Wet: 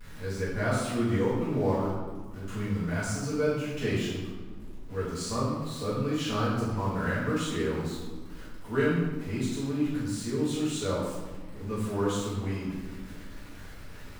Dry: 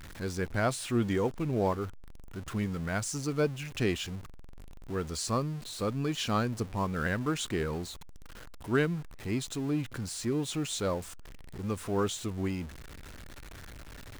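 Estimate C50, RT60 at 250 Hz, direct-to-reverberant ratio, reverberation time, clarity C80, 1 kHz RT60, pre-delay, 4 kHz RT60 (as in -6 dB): 0.0 dB, 2.3 s, -12.0 dB, 1.6 s, 3.0 dB, 1.6 s, 4 ms, 0.95 s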